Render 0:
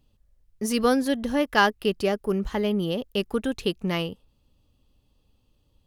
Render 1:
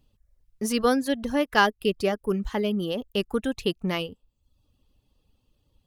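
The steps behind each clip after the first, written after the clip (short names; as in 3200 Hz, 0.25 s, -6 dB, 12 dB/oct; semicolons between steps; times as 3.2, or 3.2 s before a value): reverb removal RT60 0.65 s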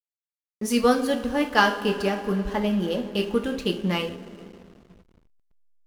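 two-slope reverb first 0.4 s, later 4.8 s, from -18 dB, DRR 2 dB; backlash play -38 dBFS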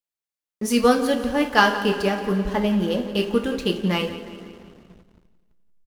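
feedback echo 0.173 s, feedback 50%, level -15.5 dB; gain +2.5 dB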